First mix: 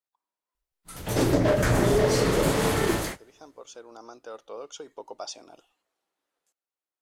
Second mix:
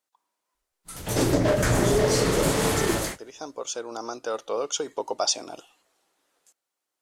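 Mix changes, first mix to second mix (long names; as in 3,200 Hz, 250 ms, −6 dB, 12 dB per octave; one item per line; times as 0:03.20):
speech +11.0 dB
master: add parametric band 7,700 Hz +5 dB 1.5 octaves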